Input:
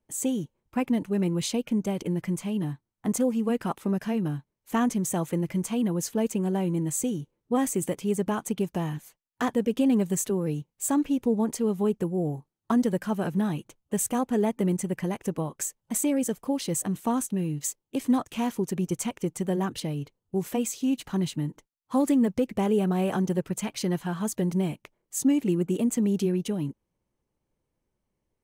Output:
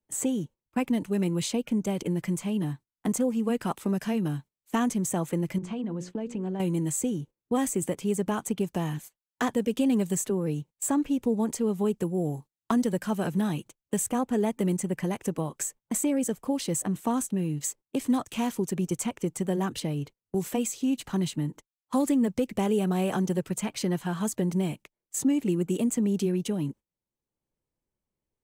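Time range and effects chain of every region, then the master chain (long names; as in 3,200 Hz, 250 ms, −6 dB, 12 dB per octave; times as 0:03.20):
0:05.58–0:06.60: mains-hum notches 60/120/180/240/300/360/420/480/540 Hz + downward compressor 8 to 1, threshold −29 dBFS + head-to-tape spacing loss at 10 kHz 26 dB
whole clip: noise gate −43 dBFS, range −19 dB; parametric band 7,800 Hz +4 dB 0.26 octaves; multiband upward and downward compressor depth 40%; level −1 dB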